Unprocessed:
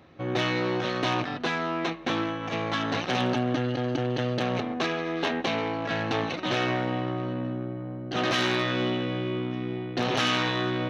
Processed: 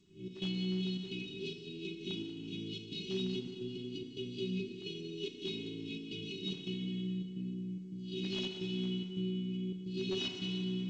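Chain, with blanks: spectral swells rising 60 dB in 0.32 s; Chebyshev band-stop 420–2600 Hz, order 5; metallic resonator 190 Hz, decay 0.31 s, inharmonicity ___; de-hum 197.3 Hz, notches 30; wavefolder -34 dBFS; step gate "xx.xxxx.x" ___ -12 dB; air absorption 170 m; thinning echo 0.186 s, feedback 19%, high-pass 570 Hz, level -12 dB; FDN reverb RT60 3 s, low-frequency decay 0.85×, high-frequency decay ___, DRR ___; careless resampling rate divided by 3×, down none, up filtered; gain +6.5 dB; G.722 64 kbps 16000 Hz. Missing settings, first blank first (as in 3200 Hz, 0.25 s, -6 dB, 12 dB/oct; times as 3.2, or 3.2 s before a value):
0.008, 108 bpm, 0.55×, 3.5 dB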